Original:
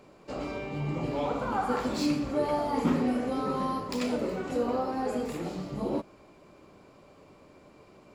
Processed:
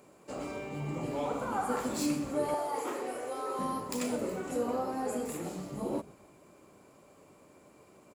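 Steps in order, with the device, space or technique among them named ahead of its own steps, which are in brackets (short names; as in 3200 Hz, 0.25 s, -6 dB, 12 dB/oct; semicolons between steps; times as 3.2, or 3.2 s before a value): 2.54–3.59 Chebyshev high-pass 350 Hz, order 4; frequency-shifting echo 0.127 s, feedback 49%, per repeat -140 Hz, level -21 dB; budget condenser microphone (HPF 110 Hz 6 dB/oct; resonant high shelf 6300 Hz +9.5 dB, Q 1.5); gain -3 dB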